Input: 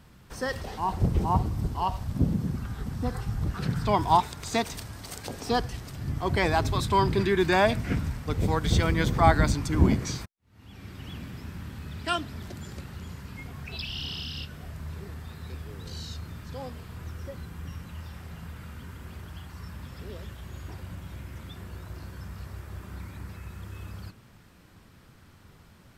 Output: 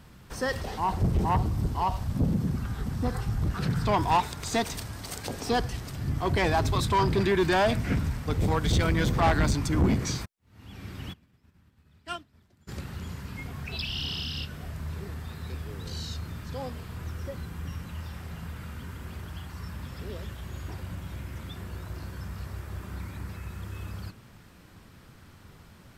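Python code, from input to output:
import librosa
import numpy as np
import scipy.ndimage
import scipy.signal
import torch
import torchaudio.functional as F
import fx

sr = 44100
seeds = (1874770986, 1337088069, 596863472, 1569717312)

y = 10.0 ** (-20.0 / 20.0) * np.tanh(x / 10.0 ** (-20.0 / 20.0))
y = fx.upward_expand(y, sr, threshold_db=-41.0, expansion=2.5, at=(11.12, 12.67), fade=0.02)
y = y * librosa.db_to_amplitude(2.5)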